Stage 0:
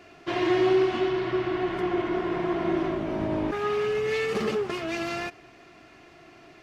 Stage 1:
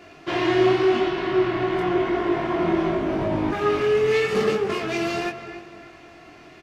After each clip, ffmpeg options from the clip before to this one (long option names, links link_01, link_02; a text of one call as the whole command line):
ffmpeg -i in.wav -filter_complex "[0:a]asplit=2[link_01][link_02];[link_02]adelay=301,lowpass=frequency=2300:poles=1,volume=-10dB,asplit=2[link_03][link_04];[link_04]adelay=301,lowpass=frequency=2300:poles=1,volume=0.42,asplit=2[link_05][link_06];[link_06]adelay=301,lowpass=frequency=2300:poles=1,volume=0.42,asplit=2[link_07][link_08];[link_08]adelay=301,lowpass=frequency=2300:poles=1,volume=0.42[link_09];[link_01][link_03][link_05][link_07][link_09]amix=inputs=5:normalize=0,flanger=delay=20:depth=3.7:speed=0.88,volume=7.5dB" out.wav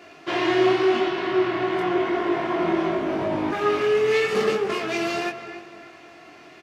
ffmpeg -i in.wav -af "highpass=frequency=270:poles=1,volume=1dB" out.wav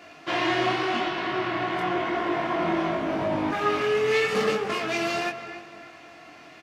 ffmpeg -i in.wav -af "equalizer=frequency=380:width_type=o:width=0.2:gain=-12.5" out.wav